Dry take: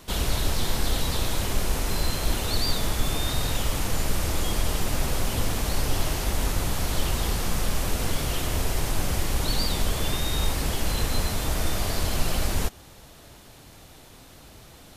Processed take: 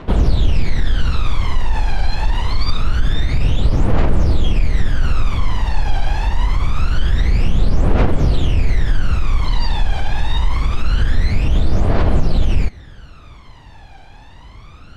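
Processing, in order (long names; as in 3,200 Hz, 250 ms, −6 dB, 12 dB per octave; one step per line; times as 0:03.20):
low-pass filter 2,800 Hz 12 dB per octave
brickwall limiter −19.5 dBFS, peak gain reduction 8.5 dB
phase shifter 0.25 Hz, delay 1.3 ms, feedback 75%
level +4.5 dB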